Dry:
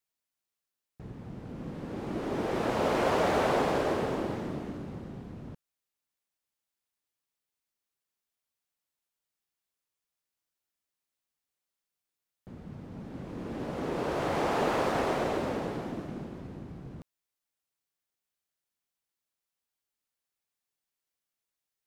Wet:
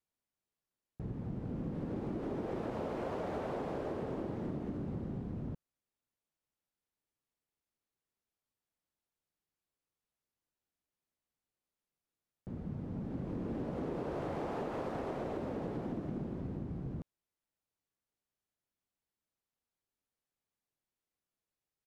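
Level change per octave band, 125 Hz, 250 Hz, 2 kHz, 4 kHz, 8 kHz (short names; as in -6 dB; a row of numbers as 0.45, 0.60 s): -1.5 dB, -4.0 dB, -15.0 dB, -17.0 dB, under -15 dB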